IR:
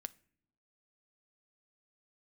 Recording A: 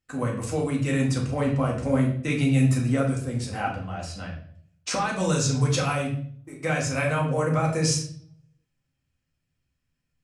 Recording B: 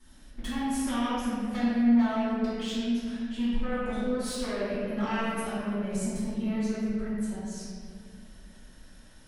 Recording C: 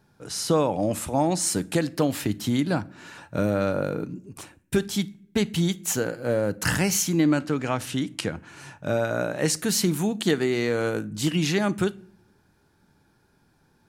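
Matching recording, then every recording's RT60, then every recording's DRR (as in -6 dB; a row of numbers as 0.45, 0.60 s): C; 0.55 s, 2.2 s, not exponential; -2.0, -15.0, 15.0 dB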